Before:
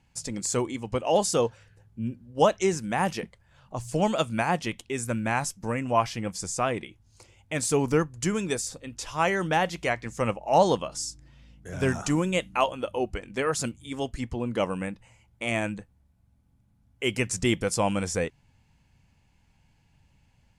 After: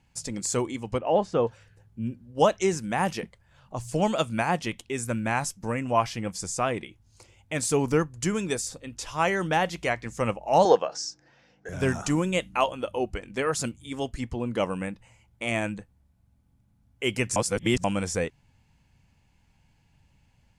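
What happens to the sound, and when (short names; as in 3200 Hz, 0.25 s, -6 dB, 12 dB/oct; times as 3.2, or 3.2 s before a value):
0.98–1.47 LPF 2000 Hz
10.65–11.69 speaker cabinet 240–6300 Hz, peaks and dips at 240 Hz -6 dB, 470 Hz +9 dB, 760 Hz +10 dB, 1600 Hz +10 dB, 3300 Hz -5 dB, 5600 Hz +5 dB
17.36–17.84 reverse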